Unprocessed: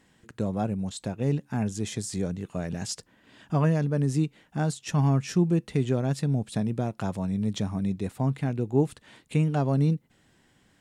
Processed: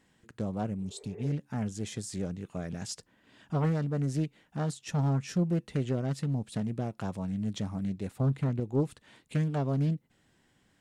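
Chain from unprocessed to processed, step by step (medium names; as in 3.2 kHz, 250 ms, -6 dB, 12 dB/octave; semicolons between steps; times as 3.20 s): 0.82–1.28 s: spectral replace 380–2400 Hz both; 8.20–8.60 s: bass shelf 340 Hz +5 dB; loudspeaker Doppler distortion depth 0.46 ms; trim -5 dB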